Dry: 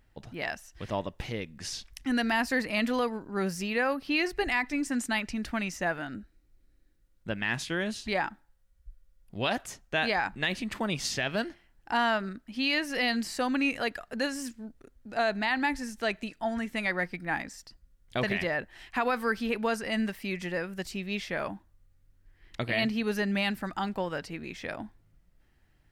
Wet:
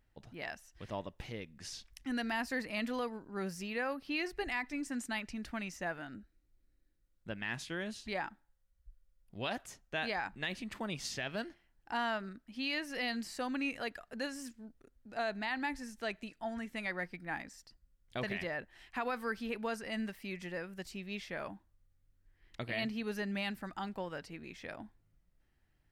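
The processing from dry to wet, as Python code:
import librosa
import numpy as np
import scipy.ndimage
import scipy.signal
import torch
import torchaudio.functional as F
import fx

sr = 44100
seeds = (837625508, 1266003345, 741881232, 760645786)

y = x * librosa.db_to_amplitude(-8.5)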